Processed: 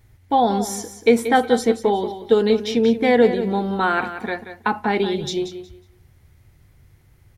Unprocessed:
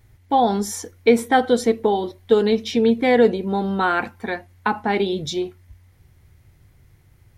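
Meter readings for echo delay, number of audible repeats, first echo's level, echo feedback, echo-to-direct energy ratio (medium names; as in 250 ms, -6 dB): 182 ms, 2, -11.0 dB, 22%, -11.0 dB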